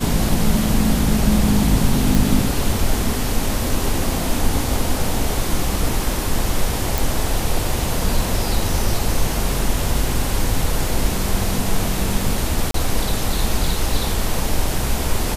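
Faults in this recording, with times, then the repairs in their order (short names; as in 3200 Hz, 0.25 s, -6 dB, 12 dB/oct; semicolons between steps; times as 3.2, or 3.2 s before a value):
2.15 pop
6.98 pop
12.71–12.74 gap 33 ms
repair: de-click; interpolate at 12.71, 33 ms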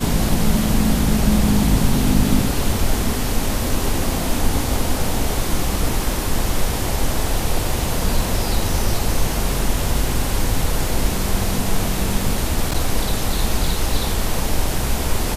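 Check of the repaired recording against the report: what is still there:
none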